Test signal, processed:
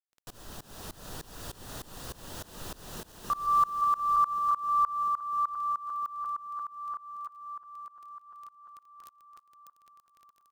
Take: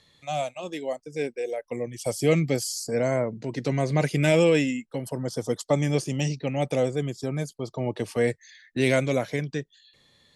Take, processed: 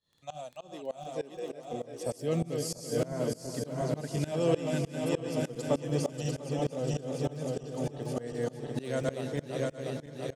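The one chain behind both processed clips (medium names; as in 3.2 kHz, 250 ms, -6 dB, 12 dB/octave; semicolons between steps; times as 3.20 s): backward echo that repeats 347 ms, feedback 75%, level -3 dB; peaking EQ 2.2 kHz -14.5 dB 0.29 oct; crackle 12 per s -32 dBFS; on a send: feedback delay 331 ms, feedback 39%, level -12 dB; on the sum: tremolo saw up 3.3 Hz, depth 95%; trim -5.5 dB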